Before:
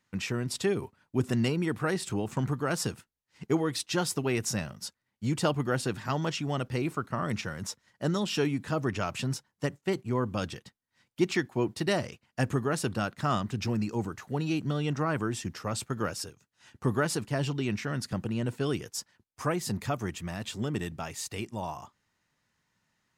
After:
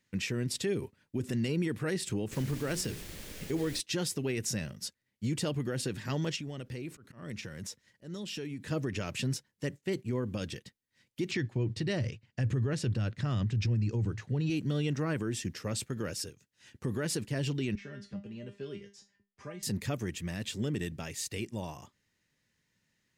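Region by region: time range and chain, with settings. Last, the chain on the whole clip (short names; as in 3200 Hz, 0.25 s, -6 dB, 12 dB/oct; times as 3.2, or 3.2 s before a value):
2.31–3.79 notches 60/120/180/240/300/360/420 Hz + added noise pink -44 dBFS
6.36–8.71 compressor 4:1, threshold -37 dBFS + auto swell 0.132 s
11.31–14.5 LPF 5900 Hz + bell 110 Hz +14.5 dB 0.66 oct
17.75–19.63 air absorption 120 m + resonator 200 Hz, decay 0.24 s, mix 90% + three-band squash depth 40%
whole clip: band shelf 970 Hz -9 dB 1.3 oct; limiter -23.5 dBFS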